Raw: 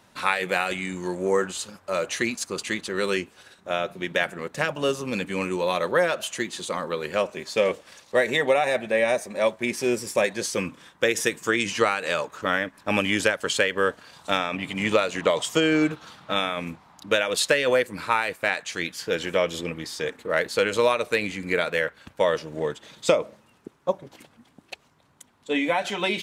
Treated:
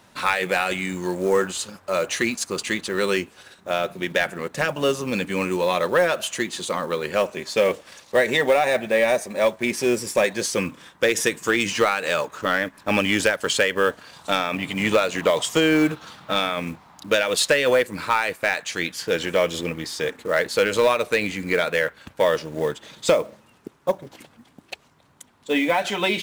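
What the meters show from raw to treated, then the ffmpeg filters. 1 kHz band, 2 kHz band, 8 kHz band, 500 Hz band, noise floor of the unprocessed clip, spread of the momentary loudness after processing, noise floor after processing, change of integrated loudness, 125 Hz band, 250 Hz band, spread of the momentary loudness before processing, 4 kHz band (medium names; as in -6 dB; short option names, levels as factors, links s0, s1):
+2.5 dB, +2.5 dB, +3.5 dB, +2.5 dB, -60 dBFS, 8 LU, -56 dBFS, +2.5 dB, +2.5 dB, +3.0 dB, 9 LU, +2.5 dB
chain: -af "acrusher=bits=6:mode=log:mix=0:aa=0.000001,aeval=exprs='0.562*(cos(1*acos(clip(val(0)/0.562,-1,1)))-cos(1*PI/2))+0.0562*(cos(5*acos(clip(val(0)/0.562,-1,1)))-cos(5*PI/2))':c=same"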